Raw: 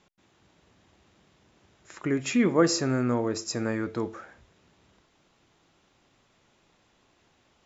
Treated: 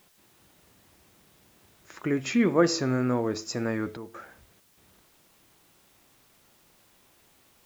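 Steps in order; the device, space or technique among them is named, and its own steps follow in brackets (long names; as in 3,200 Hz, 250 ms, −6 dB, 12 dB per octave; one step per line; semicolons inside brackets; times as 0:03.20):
worn cassette (low-pass filter 6,400 Hz; tape wow and flutter; tape dropouts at 0:03.97/0:04.60, 171 ms −11 dB; white noise bed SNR 32 dB)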